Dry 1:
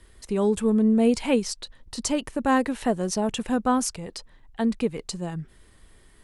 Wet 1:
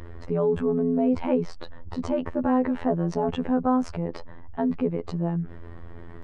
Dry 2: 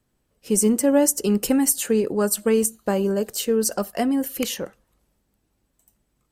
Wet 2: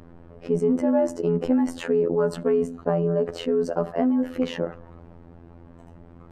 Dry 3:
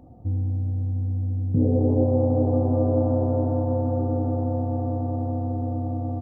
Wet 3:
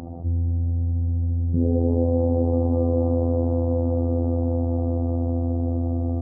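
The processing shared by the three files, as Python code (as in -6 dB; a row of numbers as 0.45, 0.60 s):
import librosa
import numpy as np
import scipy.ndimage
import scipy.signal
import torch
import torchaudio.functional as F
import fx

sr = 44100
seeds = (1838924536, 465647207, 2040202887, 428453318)

y = scipy.signal.sosfilt(scipy.signal.butter(2, 1100.0, 'lowpass', fs=sr, output='sos'), x)
y = fx.robotise(y, sr, hz=84.8)
y = fx.env_flatten(y, sr, amount_pct=50)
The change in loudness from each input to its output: -1.0, -2.5, +1.0 LU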